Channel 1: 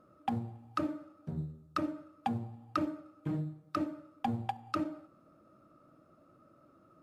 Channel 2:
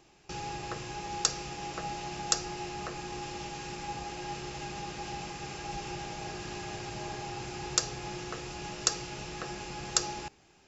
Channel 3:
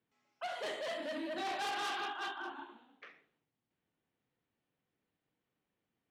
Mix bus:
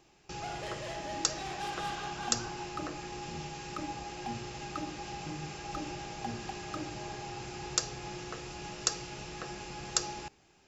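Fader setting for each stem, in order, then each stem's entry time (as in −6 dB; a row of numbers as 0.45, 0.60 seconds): −7.5, −2.5, −3.5 decibels; 2.00, 0.00, 0.00 seconds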